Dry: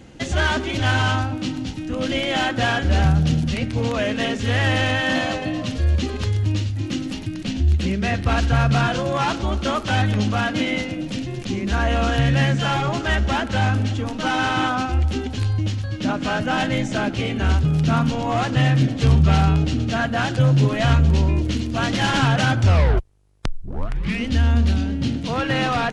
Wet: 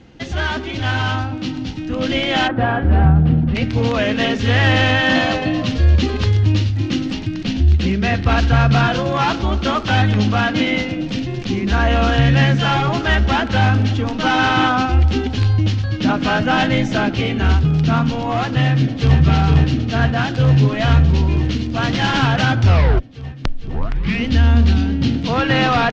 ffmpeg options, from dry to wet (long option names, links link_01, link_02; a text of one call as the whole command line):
ffmpeg -i in.wav -filter_complex "[0:a]asplit=3[link_01][link_02][link_03];[link_01]afade=type=out:start_time=2.47:duration=0.02[link_04];[link_02]lowpass=1300,afade=type=in:start_time=2.47:duration=0.02,afade=type=out:start_time=3.54:duration=0.02[link_05];[link_03]afade=type=in:start_time=3.54:duration=0.02[link_06];[link_04][link_05][link_06]amix=inputs=3:normalize=0,asplit=2[link_07][link_08];[link_08]afade=type=in:start_time=18.63:duration=0.01,afade=type=out:start_time=19.18:duration=0.01,aecho=0:1:460|920|1380|1840|2300|2760|3220|3680|4140|4600|5060|5520:0.595662|0.47653|0.381224|0.304979|0.243983|0.195187|0.156149|0.124919|0.0999355|0.0799484|0.0639587|0.051167[link_09];[link_07][link_09]amix=inputs=2:normalize=0,lowpass=frequency=5700:width=0.5412,lowpass=frequency=5700:width=1.3066,dynaudnorm=framelen=250:gausssize=13:maxgain=11.5dB,bandreject=frequency=580:width=12,volume=-1dB" out.wav